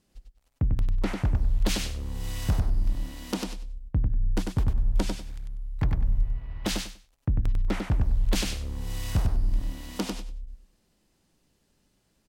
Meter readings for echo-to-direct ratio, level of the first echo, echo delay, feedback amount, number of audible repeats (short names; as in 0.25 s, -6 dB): -4.5 dB, -4.5 dB, 97 ms, 21%, 3